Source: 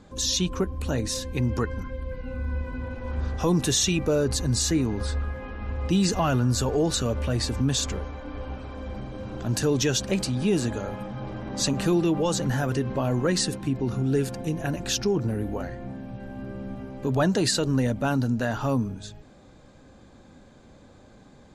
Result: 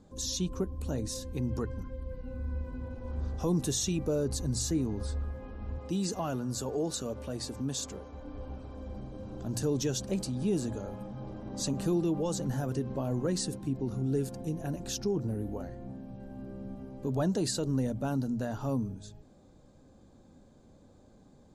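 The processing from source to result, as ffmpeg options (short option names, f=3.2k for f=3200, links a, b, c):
-filter_complex "[0:a]asettb=1/sr,asplit=3[a][b][c];[a]atrim=end=5.784[d];[b]atrim=start=5.78:end=8.13,asetpts=PTS-STARTPTS,afade=t=in:d=0.004:c=qsin,afade=t=out:st=2.346:d=0.004:c=qsin,highpass=f=240:p=1[e];[c]atrim=start=8.126[f];[d][e]acrossfade=d=0.004:c1=hsin:c2=qsin[g];[g][f]acrossfade=d=0.004:c1=qsin:c2=hsin,equalizer=f=2.1k:t=o:w=2:g=-11,bandreject=f=60:t=h:w=6,bandreject=f=120:t=h:w=6,volume=-5.5dB"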